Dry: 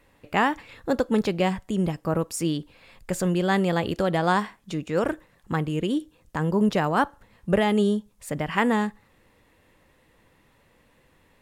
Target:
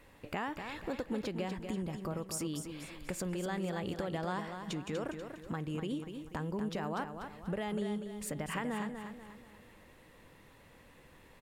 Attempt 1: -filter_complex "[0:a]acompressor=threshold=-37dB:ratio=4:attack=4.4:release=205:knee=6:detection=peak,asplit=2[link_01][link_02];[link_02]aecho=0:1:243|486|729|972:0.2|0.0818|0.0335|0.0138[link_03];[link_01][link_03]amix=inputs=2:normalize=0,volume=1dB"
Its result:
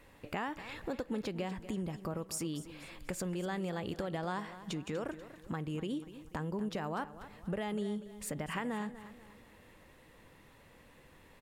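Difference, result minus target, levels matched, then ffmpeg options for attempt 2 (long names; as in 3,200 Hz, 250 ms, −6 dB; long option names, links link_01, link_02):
echo-to-direct −6.5 dB
-filter_complex "[0:a]acompressor=threshold=-37dB:ratio=4:attack=4.4:release=205:knee=6:detection=peak,asplit=2[link_01][link_02];[link_02]aecho=0:1:243|486|729|972|1215:0.422|0.173|0.0709|0.0291|0.0119[link_03];[link_01][link_03]amix=inputs=2:normalize=0,volume=1dB"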